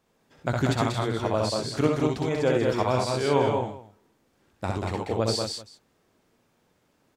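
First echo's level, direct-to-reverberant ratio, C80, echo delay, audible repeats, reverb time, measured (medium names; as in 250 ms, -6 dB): -3.0 dB, no reverb, no reverb, 63 ms, 4, no reverb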